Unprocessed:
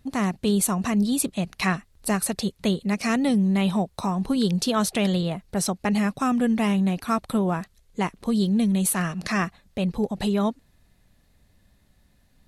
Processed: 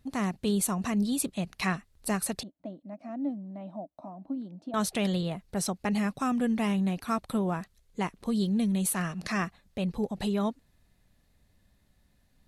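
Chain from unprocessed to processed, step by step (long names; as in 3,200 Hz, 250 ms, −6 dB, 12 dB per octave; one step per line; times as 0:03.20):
0:02.43–0:04.74: pair of resonant band-passes 430 Hz, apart 1.1 octaves
level −5.5 dB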